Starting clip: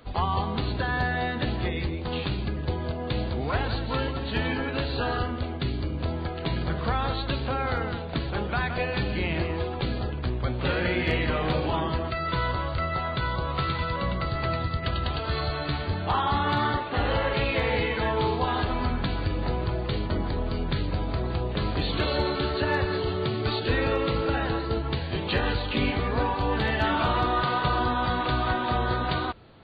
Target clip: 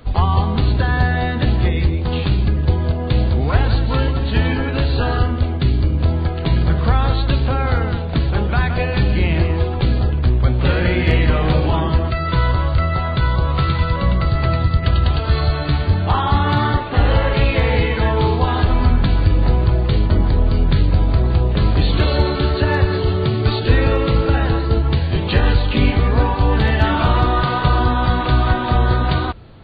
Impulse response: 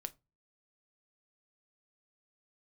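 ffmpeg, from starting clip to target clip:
-af "lowshelf=f=150:g=11.5,volume=5.5dB"

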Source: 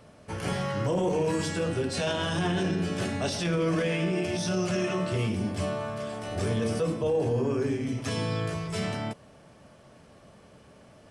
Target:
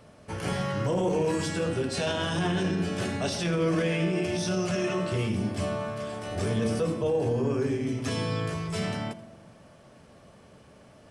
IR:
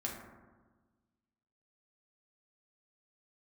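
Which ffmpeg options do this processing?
-filter_complex "[0:a]asplit=2[a][b];[1:a]atrim=start_sample=2205,adelay=80[c];[b][c]afir=irnorm=-1:irlink=0,volume=-15dB[d];[a][d]amix=inputs=2:normalize=0"

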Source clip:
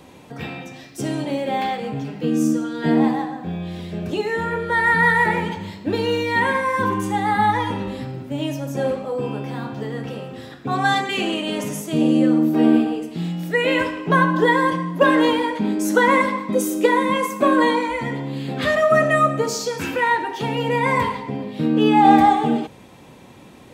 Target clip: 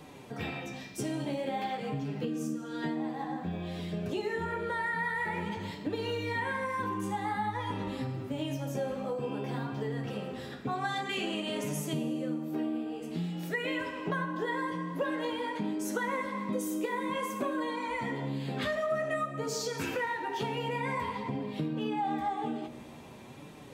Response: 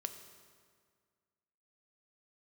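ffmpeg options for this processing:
-filter_complex "[0:a]flanger=delay=6.6:depth=9.8:regen=35:speed=0.51:shape=sinusoidal,acompressor=threshold=-30dB:ratio=6,asplit=2[a][b];[1:a]atrim=start_sample=2205[c];[b][c]afir=irnorm=-1:irlink=0,volume=5.5dB[d];[a][d]amix=inputs=2:normalize=0,volume=-8.5dB"

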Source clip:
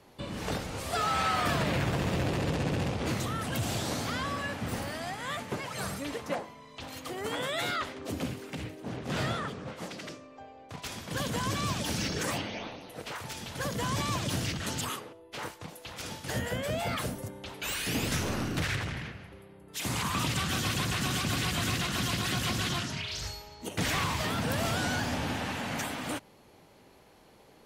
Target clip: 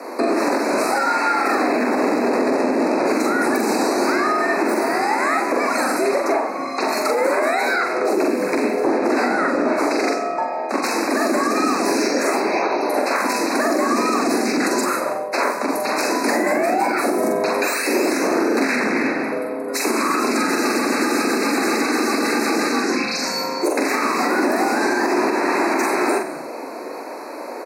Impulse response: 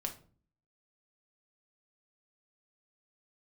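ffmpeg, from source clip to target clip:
-filter_complex "[0:a]highpass=f=150:w=0.5412,highpass=f=150:w=1.3066,equalizer=f=9.3k:w=6.6:g=3.5,asplit=2[a][b];[b]asplit=3[c][d][e];[c]adelay=92,afreqshift=-38,volume=-14.5dB[f];[d]adelay=184,afreqshift=-76,volume=-23.6dB[g];[e]adelay=276,afreqshift=-114,volume=-32.7dB[h];[f][g][h]amix=inputs=3:normalize=0[i];[a][i]amix=inputs=2:normalize=0,acompressor=threshold=-41dB:ratio=10,highshelf=f=2.4k:g=-9.5,asplit=2[j][k];[k]adelay=44,volume=-3.5dB[l];[j][l]amix=inputs=2:normalize=0,afreqshift=110,asuperstop=centerf=3200:order=20:qfactor=2.6,acontrast=52,alimiter=level_in=29dB:limit=-1dB:release=50:level=0:latency=1,volume=-8.5dB"

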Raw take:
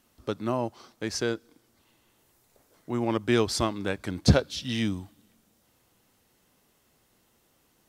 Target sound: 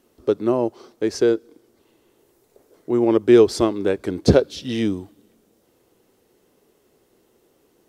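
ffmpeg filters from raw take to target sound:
-af "equalizer=f=400:t=o:w=1.1:g=15"

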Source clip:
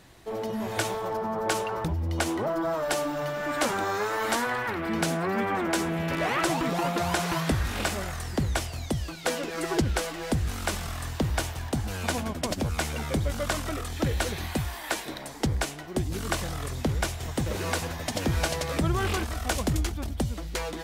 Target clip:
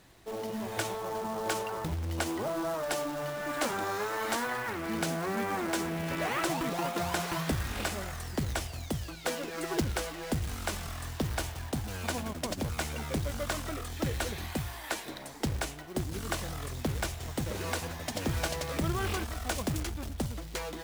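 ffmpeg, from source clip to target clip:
-af "acrusher=bits=3:mode=log:mix=0:aa=0.000001,bandreject=f=57.85:t=h:w=4,bandreject=f=115.7:t=h:w=4,bandreject=f=173.55:t=h:w=4,volume=-5dB"

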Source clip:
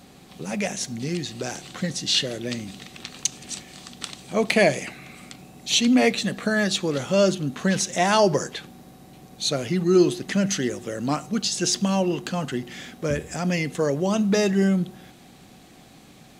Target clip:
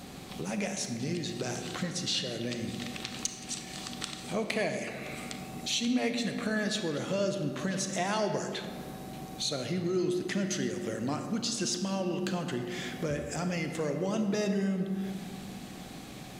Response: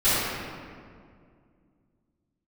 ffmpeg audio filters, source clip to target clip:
-filter_complex "[0:a]acompressor=threshold=-40dB:ratio=2.5,asplit=2[a][b];[1:a]atrim=start_sample=2205,adelay=28[c];[b][c]afir=irnorm=-1:irlink=0,volume=-24dB[d];[a][d]amix=inputs=2:normalize=0,volume=3.5dB"

